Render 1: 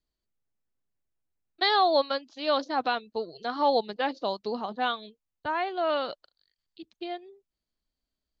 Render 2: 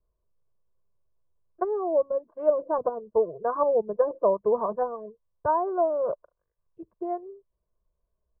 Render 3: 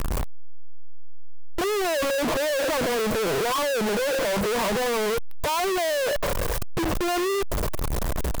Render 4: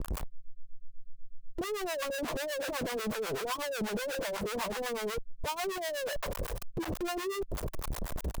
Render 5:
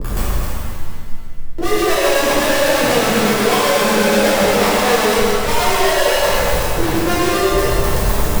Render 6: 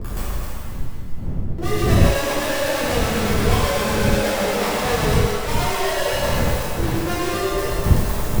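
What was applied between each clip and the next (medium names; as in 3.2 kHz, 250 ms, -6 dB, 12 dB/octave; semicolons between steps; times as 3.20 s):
low-pass that closes with the level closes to 350 Hz, closed at -22.5 dBFS; steep low-pass 1.2 kHz 36 dB/octave; comb 1.9 ms, depth 93%; trim +5.5 dB
one-bit comparator; trim +4.5 dB
harmonic tremolo 8.1 Hz, depth 100%, crossover 640 Hz; trim -5.5 dB
chunks repeated in reverse 153 ms, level -6 dB; pitch-shifted reverb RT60 2 s, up +7 st, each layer -8 dB, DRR -10.5 dB; trim +8 dB
wind noise 130 Hz -16 dBFS; trim -7 dB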